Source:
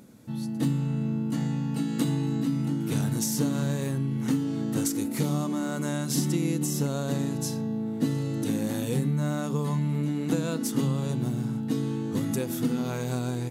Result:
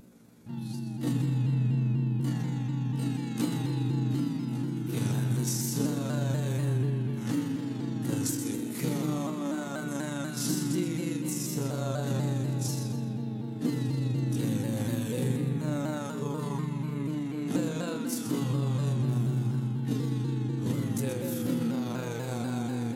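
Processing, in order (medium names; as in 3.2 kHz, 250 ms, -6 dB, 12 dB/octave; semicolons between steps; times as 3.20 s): granular stretch 1.7×, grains 83 ms; on a send: thinning echo 128 ms, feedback 39%, level -8.5 dB; on the sum: spring tank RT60 3.4 s, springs 54 ms, chirp 70 ms, DRR 4 dB; vibrato with a chosen wave saw down 4.1 Hz, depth 100 cents; trim -3 dB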